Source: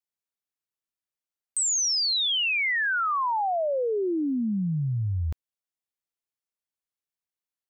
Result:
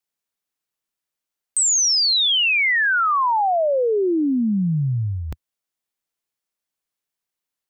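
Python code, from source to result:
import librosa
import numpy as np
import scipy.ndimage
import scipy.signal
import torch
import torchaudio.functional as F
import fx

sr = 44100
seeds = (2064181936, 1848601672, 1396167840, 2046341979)

y = fx.peak_eq(x, sr, hz=83.0, db=-8.5, octaves=0.53)
y = F.gain(torch.from_numpy(y), 7.0).numpy()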